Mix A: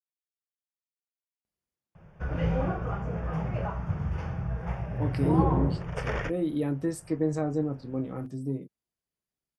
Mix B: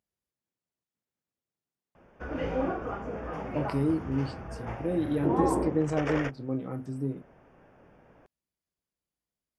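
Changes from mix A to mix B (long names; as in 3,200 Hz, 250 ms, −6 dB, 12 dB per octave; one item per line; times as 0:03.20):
speech: entry −1.45 s
background: add low shelf with overshoot 200 Hz −8.5 dB, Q 3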